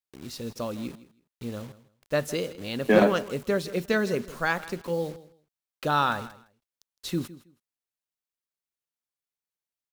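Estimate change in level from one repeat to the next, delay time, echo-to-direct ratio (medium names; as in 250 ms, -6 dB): -14.5 dB, 161 ms, -17.5 dB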